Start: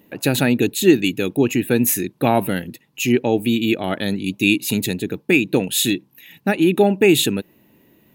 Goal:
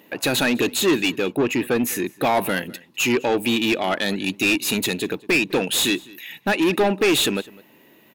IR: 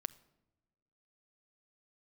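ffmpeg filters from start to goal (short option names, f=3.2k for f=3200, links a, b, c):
-filter_complex "[0:a]asettb=1/sr,asplit=3[a][b][c];[a]atrim=end=1.124[d];[b]atrim=start=1.12:end=2.14,asetpts=PTS-STARTPTS,afade=t=in:d=0.004:c=qsin,afade=t=out:st=1.016:d=0.004:c=qsin,highshelf=f=2.7k:g=-9[e];[c]atrim=start=2.136[f];[d][e]acrossfade=d=0.004:c1=hsin:c2=qsin[g];[g][f]acrossfade=d=0.004:c1=qsin:c2=hsin,asplit=2[h][i];[i]highpass=f=720:p=1,volume=23dB,asoftclip=type=tanh:threshold=-1dB[j];[h][j]amix=inputs=2:normalize=0,lowpass=f=6k:p=1,volume=-6dB,asplit=2[k][l];[l]adelay=204.1,volume=-22dB,highshelf=f=4k:g=-4.59[m];[k][m]amix=inputs=2:normalize=0,volume=-9dB"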